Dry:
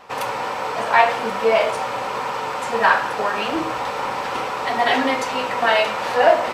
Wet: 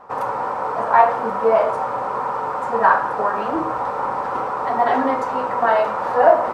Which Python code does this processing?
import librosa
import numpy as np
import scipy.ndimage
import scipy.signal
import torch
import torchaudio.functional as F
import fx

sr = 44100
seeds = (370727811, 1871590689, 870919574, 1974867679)

y = fx.high_shelf_res(x, sr, hz=1800.0, db=-13.5, q=1.5)